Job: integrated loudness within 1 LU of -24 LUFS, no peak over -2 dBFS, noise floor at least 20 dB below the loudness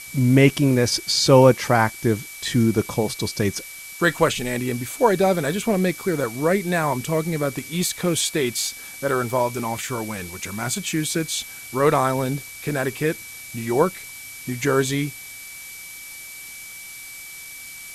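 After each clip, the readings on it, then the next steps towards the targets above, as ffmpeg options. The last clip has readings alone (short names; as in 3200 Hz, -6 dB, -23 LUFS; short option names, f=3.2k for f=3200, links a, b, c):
steady tone 2300 Hz; tone level -39 dBFS; noise floor -38 dBFS; noise floor target -42 dBFS; loudness -21.5 LUFS; peak -2.5 dBFS; loudness target -24.0 LUFS
-> -af "bandreject=f=2.3k:w=30"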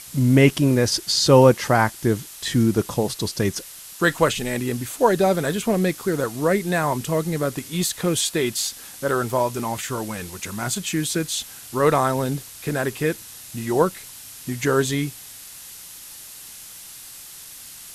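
steady tone none; noise floor -41 dBFS; noise floor target -42 dBFS
-> -af "afftdn=nr=6:nf=-41"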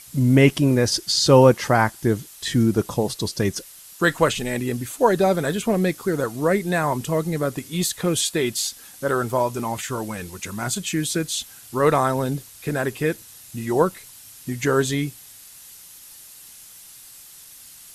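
noise floor -45 dBFS; loudness -21.5 LUFS; peak -2.5 dBFS; loudness target -24.0 LUFS
-> -af "volume=-2.5dB"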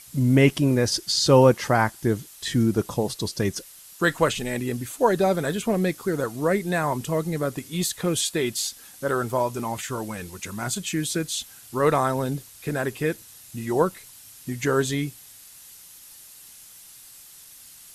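loudness -24.0 LUFS; peak -5.0 dBFS; noise floor -47 dBFS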